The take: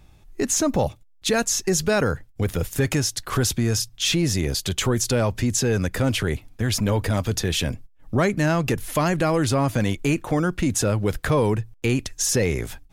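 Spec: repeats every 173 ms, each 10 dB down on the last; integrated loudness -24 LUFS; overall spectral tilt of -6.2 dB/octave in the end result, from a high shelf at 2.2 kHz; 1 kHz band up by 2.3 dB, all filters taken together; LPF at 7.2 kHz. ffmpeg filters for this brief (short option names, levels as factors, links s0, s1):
-af "lowpass=7200,equalizer=f=1000:t=o:g=5,highshelf=f=2200:g=-9,aecho=1:1:173|346|519|692:0.316|0.101|0.0324|0.0104,volume=0.944"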